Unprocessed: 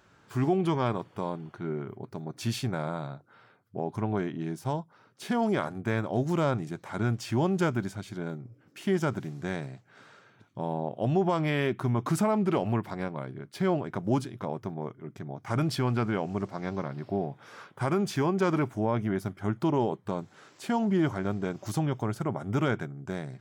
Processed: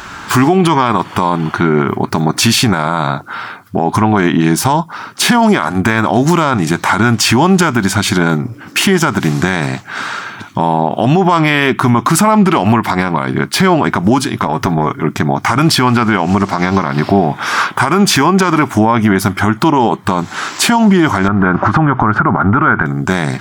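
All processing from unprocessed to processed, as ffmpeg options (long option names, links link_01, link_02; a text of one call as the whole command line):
ffmpeg -i in.wav -filter_complex "[0:a]asettb=1/sr,asplit=3[link_01][link_02][link_03];[link_01]atrim=end=14.464[link_04];[link_02]atrim=start=14.46:end=15.03,asetpts=PTS-STARTPTS,afade=type=in:duration=0.004:curve=qsin,afade=type=out:start_time=0.566:duration=0.004:curve=qsin,aecho=1:1:7.1:0.43,atrim=end_sample=25137,acompressor=threshold=-36dB:ratio=5:attack=3.2:release=140:knee=1:detection=peak[link_05];[link_03]atrim=start=15.026[link_06];[link_04][link_05]acrossfade=duration=0.004:curve1=hsin:curve2=qsin[link_07];[link_07][link_06]acrossfade=duration=0.004:curve1=qsin:curve2=hsin,asettb=1/sr,asplit=3[link_08][link_09][link_10];[link_08]atrim=end=21.284[link_11];[link_09]atrim=start=21.28:end=22.86,asetpts=PTS-STARTPTS,afade=type=in:duration=0.004:curve=qsin,afade=type=out:start_time=1.576:duration=0.004:curve=qsin,lowshelf=frequency=320:gain=5.5,acompressor=threshold=-31dB:ratio=10:attack=3.2:release=140:knee=1:detection=peak,lowpass=frequency=1400:width_type=q:width=2.8[link_12];[link_10]atrim=start=22.856[link_13];[link_11][link_12]acrossfade=duration=0.004:curve1=hsin:curve2=qsin[link_14];[link_14][link_13]acrossfade=duration=0.004:curve1=qsin:curve2=hsin,equalizer=frequency=125:width_type=o:width=1:gain=-11,equalizer=frequency=500:width_type=o:width=1:gain=-12,equalizer=frequency=1000:width_type=o:width=1:gain=4,acompressor=threshold=-38dB:ratio=6,alimiter=level_in=34.5dB:limit=-1dB:release=50:level=0:latency=1,volume=-1dB" out.wav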